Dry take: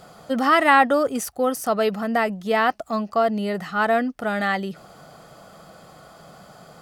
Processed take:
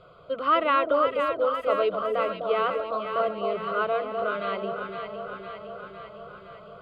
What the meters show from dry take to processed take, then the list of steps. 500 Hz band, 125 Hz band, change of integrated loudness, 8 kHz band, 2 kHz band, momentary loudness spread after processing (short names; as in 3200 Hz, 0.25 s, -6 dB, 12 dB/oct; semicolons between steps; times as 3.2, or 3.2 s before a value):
-2.0 dB, -10.5 dB, -5.0 dB, under -30 dB, -9.5 dB, 18 LU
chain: air absorption 220 m; fixed phaser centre 1200 Hz, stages 8; echo with dull and thin repeats by turns 0.254 s, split 860 Hz, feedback 80%, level -4 dB; gain -1.5 dB